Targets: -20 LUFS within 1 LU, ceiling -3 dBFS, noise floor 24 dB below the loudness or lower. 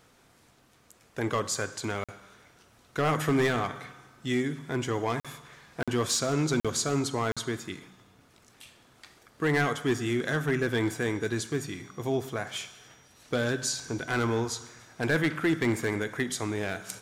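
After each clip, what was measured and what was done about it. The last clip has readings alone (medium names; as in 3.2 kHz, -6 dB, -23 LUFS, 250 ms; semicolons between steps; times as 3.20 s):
clipped samples 0.5%; clipping level -19.0 dBFS; dropouts 5; longest dropout 46 ms; loudness -29.5 LUFS; peak level -19.0 dBFS; loudness target -20.0 LUFS
-> clip repair -19 dBFS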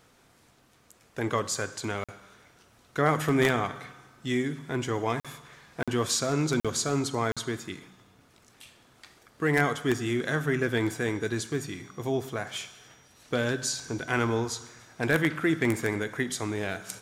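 clipped samples 0.0%; dropouts 5; longest dropout 46 ms
-> interpolate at 2.04/5.20/5.83/6.60/7.32 s, 46 ms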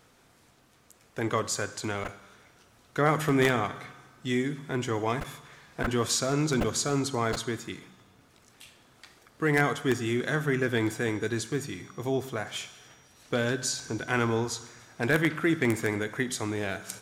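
dropouts 0; loudness -29.0 LUFS; peak level -10.0 dBFS; loudness target -20.0 LUFS
-> trim +9 dB; peak limiter -3 dBFS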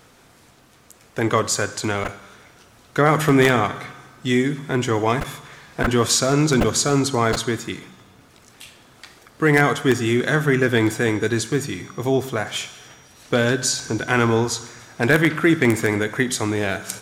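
loudness -20.0 LUFS; peak level -3.0 dBFS; noise floor -52 dBFS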